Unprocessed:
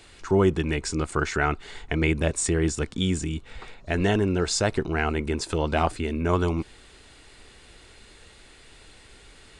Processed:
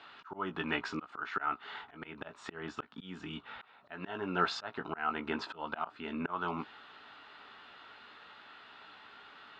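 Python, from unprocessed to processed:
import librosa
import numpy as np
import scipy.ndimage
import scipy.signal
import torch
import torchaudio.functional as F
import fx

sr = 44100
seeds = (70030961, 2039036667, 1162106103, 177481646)

y = fx.cabinet(x, sr, low_hz=330.0, low_slope=12, high_hz=3400.0, hz=(350.0, 500.0, 900.0, 1300.0, 2200.0), db=(-9, -10, 4, 9, -7))
y = fx.doubler(y, sr, ms=17.0, db=-8.5)
y = fx.auto_swell(y, sr, attack_ms=373.0)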